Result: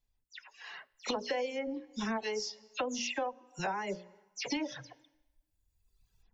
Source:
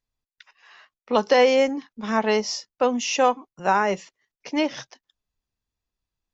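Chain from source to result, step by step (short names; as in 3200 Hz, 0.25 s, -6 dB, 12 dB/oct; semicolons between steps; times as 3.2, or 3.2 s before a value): spectral delay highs early, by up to 0.114 s; recorder AGC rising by 7.6 dB/s; reverb RT60 0.95 s, pre-delay 19 ms, DRR 15.5 dB; reverb removal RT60 1.5 s; bell 1200 Hz -8.5 dB 0.21 oct; notches 60/120/180/240/300/360/420/480/540/600 Hz; compressor 4:1, threshold -35 dBFS, peak gain reduction 17.5 dB; low shelf 96 Hz +7.5 dB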